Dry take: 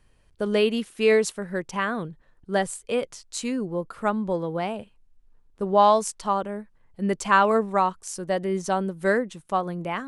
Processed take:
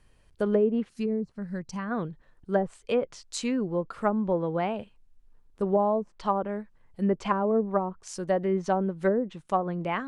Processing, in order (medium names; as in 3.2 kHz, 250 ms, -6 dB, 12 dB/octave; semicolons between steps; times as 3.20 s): low-pass that closes with the level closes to 470 Hz, closed at -17.5 dBFS; time-frequency box 0.89–1.91 s, 240–4000 Hz -11 dB